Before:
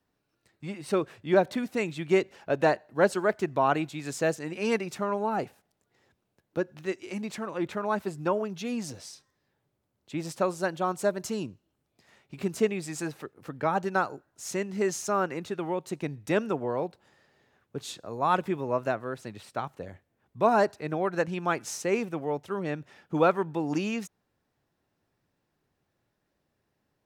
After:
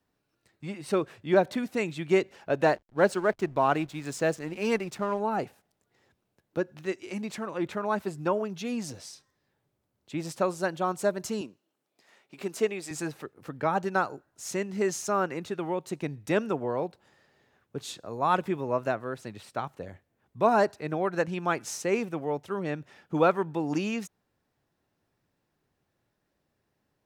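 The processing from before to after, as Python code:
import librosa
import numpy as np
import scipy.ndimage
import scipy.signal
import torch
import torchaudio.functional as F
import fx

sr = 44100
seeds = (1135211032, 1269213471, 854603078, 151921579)

y = fx.backlash(x, sr, play_db=-44.0, at=(2.65, 5.2))
y = fx.highpass(y, sr, hz=300.0, slope=12, at=(11.41, 12.91))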